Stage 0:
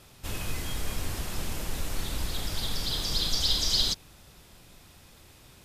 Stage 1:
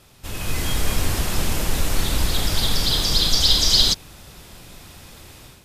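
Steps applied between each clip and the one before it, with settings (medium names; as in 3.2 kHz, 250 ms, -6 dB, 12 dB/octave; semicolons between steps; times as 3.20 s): level rider gain up to 9.5 dB; trim +1.5 dB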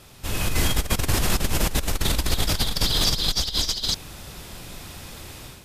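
compressor with a negative ratio -21 dBFS, ratio -0.5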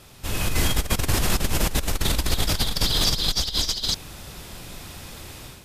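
no audible change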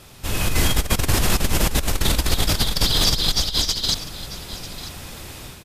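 delay 944 ms -15.5 dB; trim +3 dB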